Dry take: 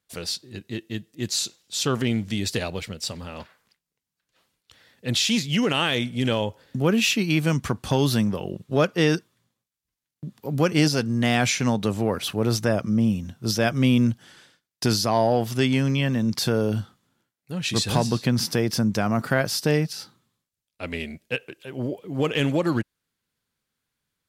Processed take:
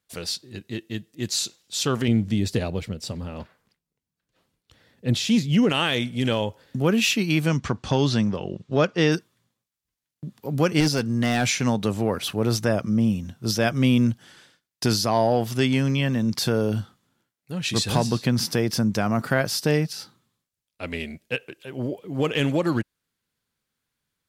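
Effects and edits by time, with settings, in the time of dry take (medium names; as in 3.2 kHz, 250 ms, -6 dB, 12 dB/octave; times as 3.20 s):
2.08–5.70 s: tilt shelf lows +5.5 dB, about 660 Hz
7.47–9.12 s: low-pass 6.9 kHz 24 dB/octave
10.80–11.52 s: hard clipper -14.5 dBFS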